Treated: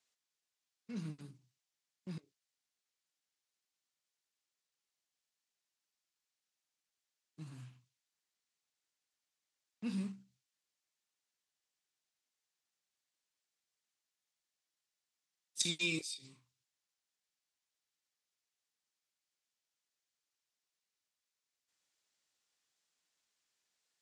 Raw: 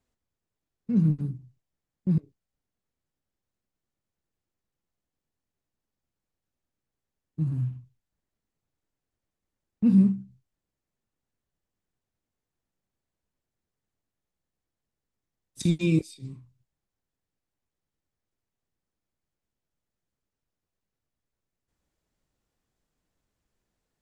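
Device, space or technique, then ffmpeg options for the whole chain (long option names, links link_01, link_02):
piezo pickup straight into a mixer: -af "lowpass=5500,aderivative,volume=11dB"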